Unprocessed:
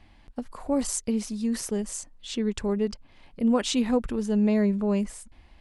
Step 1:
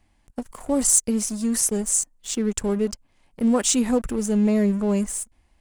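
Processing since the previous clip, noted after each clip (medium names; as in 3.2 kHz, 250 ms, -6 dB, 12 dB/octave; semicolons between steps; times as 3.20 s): resonant high shelf 5.5 kHz +10 dB, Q 1.5; waveshaping leveller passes 2; trim -4.5 dB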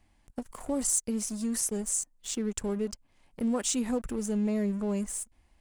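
compression 1.5:1, threshold -35 dBFS, peak gain reduction 7.5 dB; trim -2.5 dB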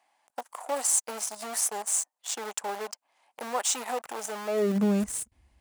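in parallel at -8 dB: bit crusher 5-bit; on the sum: high-pass sweep 770 Hz -> 65 Hz, 4.45–5.07 s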